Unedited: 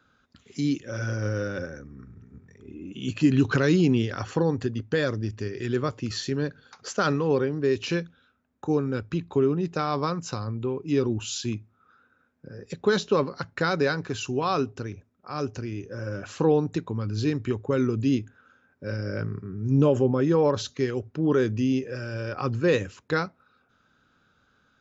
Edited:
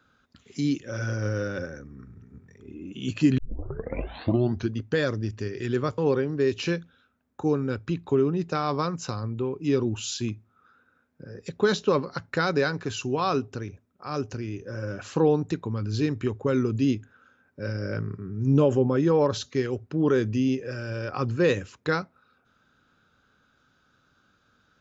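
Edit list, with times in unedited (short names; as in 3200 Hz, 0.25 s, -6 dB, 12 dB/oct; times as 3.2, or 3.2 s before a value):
3.38 tape start 1.39 s
5.98–7.22 cut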